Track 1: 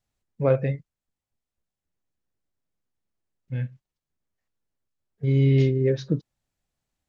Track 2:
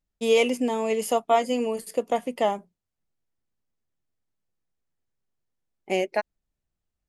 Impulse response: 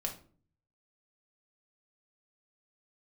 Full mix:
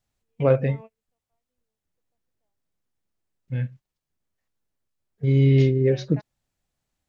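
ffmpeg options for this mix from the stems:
-filter_complex "[0:a]volume=2dB,asplit=2[a][b];[1:a]lowpass=f=3.1k:w=0.5412,lowpass=f=3.1k:w=1.3066,volume=-18.5dB[c];[b]apad=whole_len=312318[d];[c][d]sidechaingate=range=-45dB:threshold=-38dB:ratio=16:detection=peak[e];[a][e]amix=inputs=2:normalize=0"

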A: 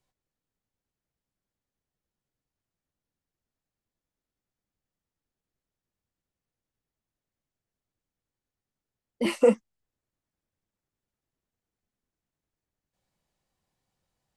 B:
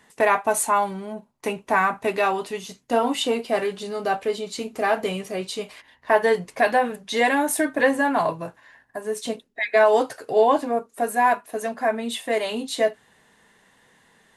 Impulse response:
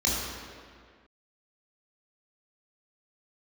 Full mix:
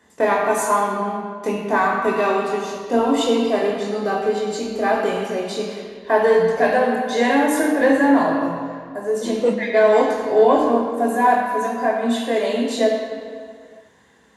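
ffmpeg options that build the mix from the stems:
-filter_complex "[0:a]volume=1dB,asplit=2[a][b];[b]volume=-18.5dB[c];[1:a]acontrast=46,volume=-7dB,asplit=3[d][e][f];[e]volume=-9dB[g];[f]apad=whole_len=633544[h];[a][h]sidechaincompress=threshold=-42dB:ratio=8:attack=16:release=141[i];[2:a]atrim=start_sample=2205[j];[c][g]amix=inputs=2:normalize=0[k];[k][j]afir=irnorm=-1:irlink=0[l];[i][d][l]amix=inputs=3:normalize=0,highpass=68,equalizer=f=9.1k:t=o:w=0.91:g=-3.5"

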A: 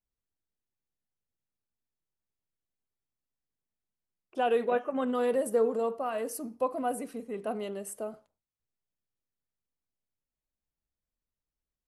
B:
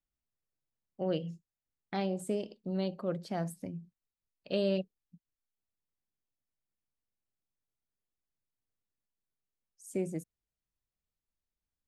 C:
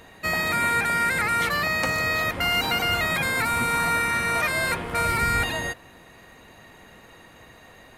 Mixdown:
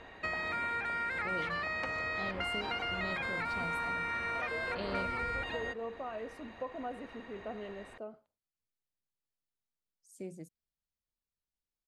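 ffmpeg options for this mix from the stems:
-filter_complex "[0:a]volume=-7.5dB[a];[1:a]equalizer=f=4.4k:t=o:w=0.8:g=7,adelay=250,volume=-10dB[b];[2:a]equalizer=f=150:w=1.4:g=-9,volume=-2dB[c];[a][c]amix=inputs=2:normalize=0,lowpass=3.2k,acompressor=threshold=-35dB:ratio=4,volume=0dB[d];[b][d]amix=inputs=2:normalize=0"

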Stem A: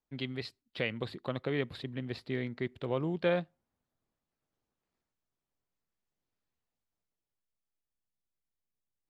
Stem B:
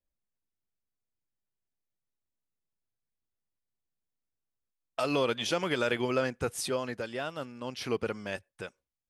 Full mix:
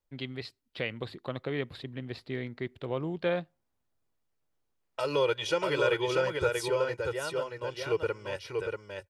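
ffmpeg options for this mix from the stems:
-filter_complex "[0:a]volume=0dB[a];[1:a]highshelf=f=4.9k:g=-7,aecho=1:1:2.1:0.87,volume=-2dB,asplit=2[b][c];[c]volume=-4dB,aecho=0:1:636:1[d];[a][b][d]amix=inputs=3:normalize=0,equalizer=f=210:t=o:w=0.51:g=-3.5"

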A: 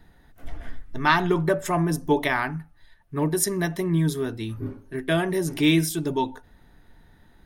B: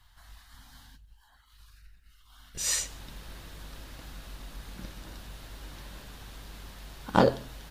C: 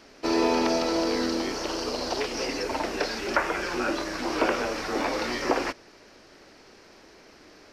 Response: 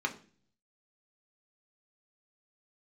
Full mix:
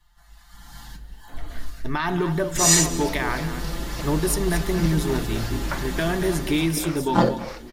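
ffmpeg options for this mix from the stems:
-filter_complex "[0:a]alimiter=limit=-16dB:level=0:latency=1:release=92,adelay=900,volume=1.5dB,asplit=2[a][b];[b]volume=-10.5dB[c];[1:a]dynaudnorm=f=290:g=5:m=16.5dB,aecho=1:1:5.8:0.96,volume=-4dB,asplit=4[d][e][f][g];[e]volume=-11dB[h];[f]volume=-20.5dB[i];[2:a]acrossover=split=450[j][k];[j]aeval=exprs='val(0)*(1-1/2+1/2*cos(2*PI*3.4*n/s))':c=same[l];[k]aeval=exprs='val(0)*(1-1/2-1/2*cos(2*PI*3.4*n/s))':c=same[m];[l][m]amix=inputs=2:normalize=0,adelay=2350,volume=-6dB[n];[g]apad=whole_len=444360[o];[n][o]sidechaingate=range=-33dB:threshold=-47dB:ratio=16:detection=peak[p];[3:a]atrim=start_sample=2205[q];[h][q]afir=irnorm=-1:irlink=0[r];[c][i]amix=inputs=2:normalize=0,aecho=0:1:229:1[s];[a][d][p][r][s]amix=inputs=5:normalize=0"

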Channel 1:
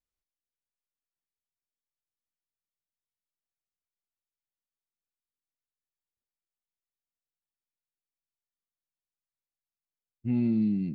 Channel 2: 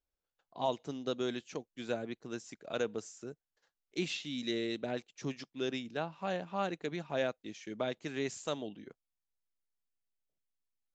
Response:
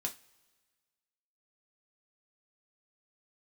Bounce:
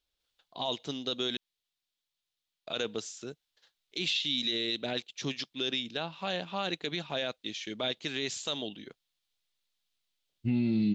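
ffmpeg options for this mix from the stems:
-filter_complex "[0:a]adelay=200,volume=0.5dB,asplit=2[a][b];[b]volume=-11dB[c];[1:a]alimiter=level_in=3dB:limit=-24dB:level=0:latency=1:release=19,volume=-3dB,volume=2.5dB,asplit=3[d][e][f];[d]atrim=end=1.37,asetpts=PTS-STARTPTS,afade=t=out:st=1.366:d=0.004:c=hsin[g];[e]atrim=start=1.37:end=2.67,asetpts=PTS-STARTPTS,volume=0[h];[f]atrim=start=2.67,asetpts=PTS-STARTPTS,afade=t=in:d=0.004:c=hsin[i];[g][h][i]concat=n=3:v=0:a=1[j];[2:a]atrim=start_sample=2205[k];[c][k]afir=irnorm=-1:irlink=0[l];[a][j][l]amix=inputs=3:normalize=0,equalizer=f=3.6k:w=1.2:g=15,alimiter=limit=-20.5dB:level=0:latency=1:release=64"

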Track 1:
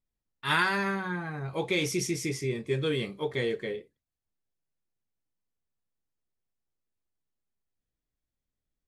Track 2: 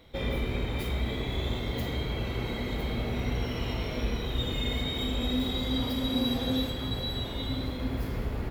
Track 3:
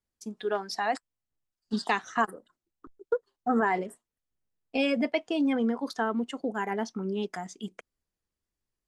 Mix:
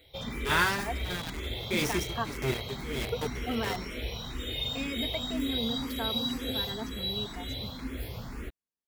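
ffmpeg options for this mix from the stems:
-filter_complex "[0:a]aeval=exprs='val(0)*gte(abs(val(0)),0.0316)':c=same,tremolo=f=1.6:d=0.94,volume=1dB[a];[1:a]highshelf=f=2.2k:g=10,asplit=2[b][c];[c]afreqshift=2[d];[b][d]amix=inputs=2:normalize=1,volume=-4dB[e];[2:a]highpass=98,aecho=1:1:4.4:0.65,volume=-11dB[f];[a][e][f]amix=inputs=3:normalize=0"

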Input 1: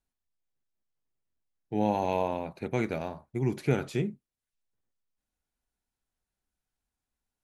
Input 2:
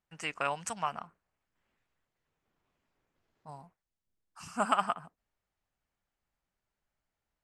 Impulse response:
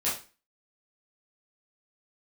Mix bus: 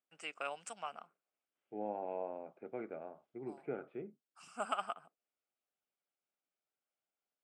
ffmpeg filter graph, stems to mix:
-filter_complex "[0:a]lowpass=f=1.8k:w=0.5412,lowpass=f=1.8k:w=1.3066,volume=-9dB[a];[1:a]volume=-5.5dB[b];[a][b]amix=inputs=2:normalize=0,highpass=380,equalizer=f=970:t=q:w=4:g=-10,equalizer=f=1.8k:t=q:w=4:g=-9,equalizer=f=4.3k:t=q:w=4:g=-6,equalizer=f=6.3k:t=q:w=4:g=-9,lowpass=f=9k:w=0.5412,lowpass=f=9k:w=1.3066"

